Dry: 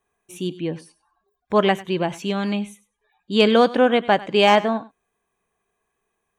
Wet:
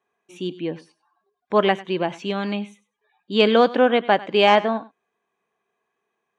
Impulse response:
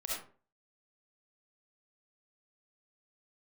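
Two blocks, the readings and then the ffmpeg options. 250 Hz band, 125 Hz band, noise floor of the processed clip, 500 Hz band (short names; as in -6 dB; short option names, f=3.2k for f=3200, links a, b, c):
-2.0 dB, -3.5 dB, -79 dBFS, 0.0 dB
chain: -af "highpass=200,lowpass=4.7k"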